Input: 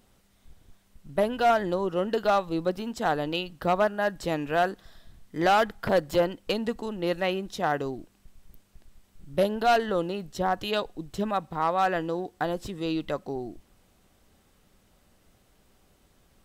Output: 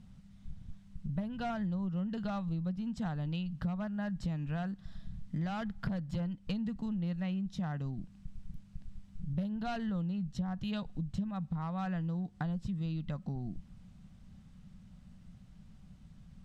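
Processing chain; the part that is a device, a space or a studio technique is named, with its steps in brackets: jukebox (low-pass 7.1 kHz 12 dB/octave; resonant low shelf 260 Hz +13 dB, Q 3; compression 6:1, threshold -29 dBFS, peak gain reduction 17.5 dB); trim -5 dB

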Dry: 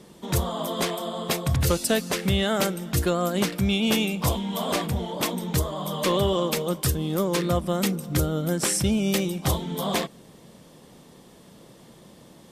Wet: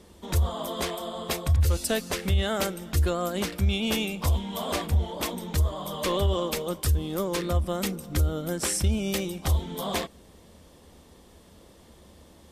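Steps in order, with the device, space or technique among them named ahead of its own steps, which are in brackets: car stereo with a boomy subwoofer (resonant low shelf 100 Hz +8.5 dB, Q 3; peak limiter -12.5 dBFS, peak gain reduction 9 dB); trim -3 dB

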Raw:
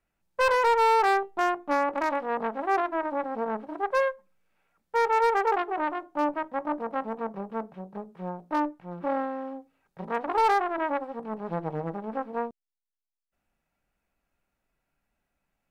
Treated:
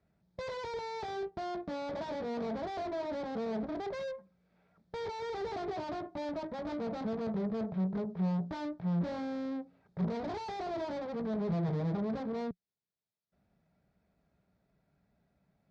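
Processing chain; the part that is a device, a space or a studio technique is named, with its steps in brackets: guitar amplifier (valve stage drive 46 dB, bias 0.8; tone controls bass +15 dB, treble +11 dB; cabinet simulation 93–4200 Hz, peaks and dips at 180 Hz +6 dB, 420 Hz +7 dB, 640 Hz +9 dB, 2.8 kHz -10 dB); trim +4 dB

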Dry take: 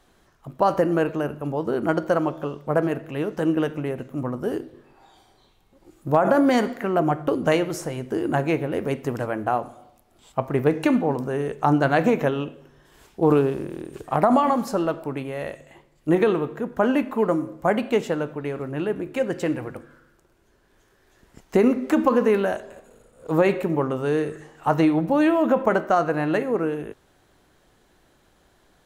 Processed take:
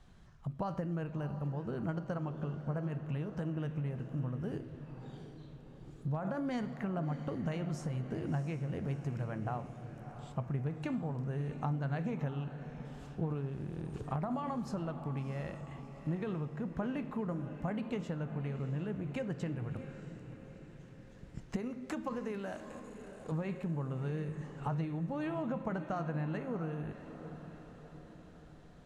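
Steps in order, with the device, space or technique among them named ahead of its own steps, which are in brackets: jukebox (low-pass 7.5 kHz 12 dB/octave; resonant low shelf 230 Hz +10.5 dB, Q 1.5; compression 4:1, threshold -30 dBFS, peak gain reduction 18 dB); 21.56–23.32 s: tone controls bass -7 dB, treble +6 dB; echo that smears into a reverb 674 ms, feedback 53%, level -11 dB; trim -6 dB

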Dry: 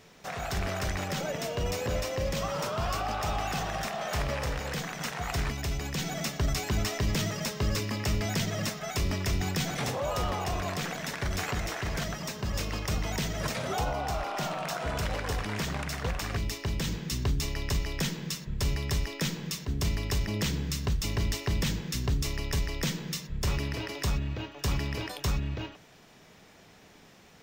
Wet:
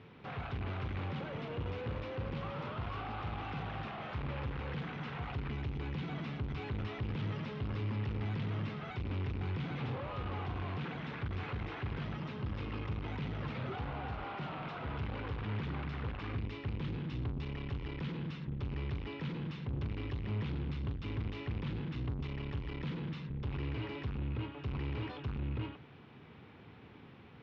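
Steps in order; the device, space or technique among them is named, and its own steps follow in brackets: guitar amplifier (valve stage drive 40 dB, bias 0.5; tone controls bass +10 dB, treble -13 dB; cabinet simulation 98–3700 Hz, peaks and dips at 180 Hz -9 dB, 640 Hz -9 dB, 1.8 kHz -5 dB); trim +2.5 dB

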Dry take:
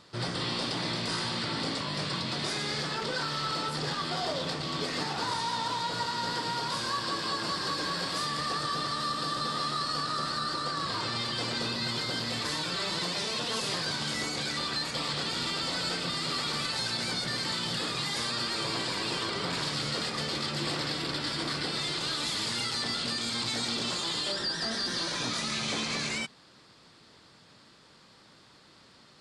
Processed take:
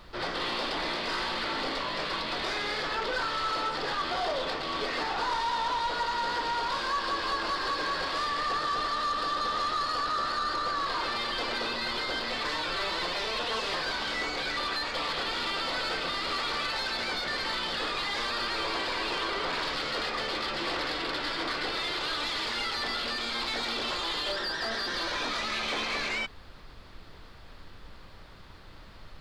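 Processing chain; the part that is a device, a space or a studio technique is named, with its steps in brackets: aircraft cabin announcement (band-pass 410–3200 Hz; saturation -28.5 dBFS, distortion -19 dB; brown noise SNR 16 dB); trim +5.5 dB

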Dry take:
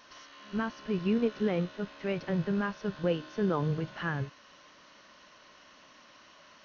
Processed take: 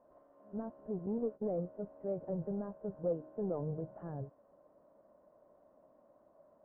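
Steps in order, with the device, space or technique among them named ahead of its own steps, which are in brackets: 1.06–1.54 s: gate -34 dBFS, range -19 dB; overdriven synthesiser ladder filter (saturation -23.5 dBFS, distortion -16 dB; four-pole ladder low-pass 730 Hz, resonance 55%); trim +2 dB

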